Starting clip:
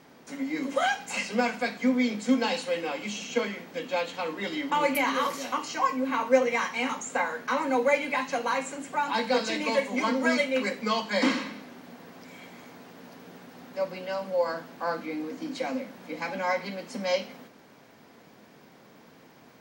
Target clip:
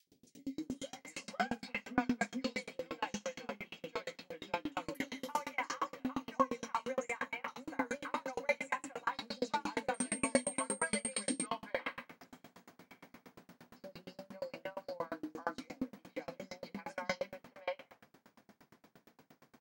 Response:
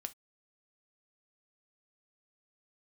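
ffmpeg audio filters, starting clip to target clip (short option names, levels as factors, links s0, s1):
-filter_complex "[0:a]asettb=1/sr,asplit=3[s0][s1][s2];[s0]atrim=end=9.944[s3];[s1]atrim=start=9.94:end=11.46,asetpts=PTS-STARTPTS,afade=t=in:d=0.004:c=qsin,afade=t=out:st=1.516:d=0.004:c=qsin,aeval=exprs='val(0)+0.0355*sin(2*PI*8600*n/s)':c=same[s4];[s2]atrim=start=11.456[s5];[s3][s4]acrossfade=d=0.004:c1=hsin:c2=qsin[s6];[s6][s5]acrossfade=d=0.004:c1=qsin:c2=hsin,acrossover=split=470|3100[s7][s8][s9];[s7]adelay=70[s10];[s8]adelay=570[s11];[s10][s11][s9]amix=inputs=3:normalize=0,aeval=exprs='val(0)*pow(10,-36*if(lt(mod(8.6*n/s,1),2*abs(8.6)/1000),1-mod(8.6*n/s,1)/(2*abs(8.6)/1000),(mod(8.6*n/s,1)-2*abs(8.6)/1000)/(1-2*abs(8.6)/1000))/20)':c=same,volume=0.891"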